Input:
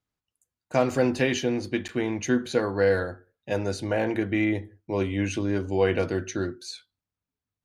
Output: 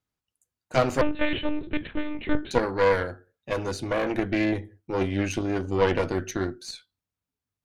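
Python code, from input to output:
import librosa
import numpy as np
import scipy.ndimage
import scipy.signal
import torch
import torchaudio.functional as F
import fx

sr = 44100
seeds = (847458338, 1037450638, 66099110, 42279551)

y = fx.cheby_harmonics(x, sr, harmonics=(4,), levels_db=(-10,), full_scale_db=-8.5)
y = fx.lpc_monotone(y, sr, seeds[0], pitch_hz=300.0, order=10, at=(1.01, 2.51))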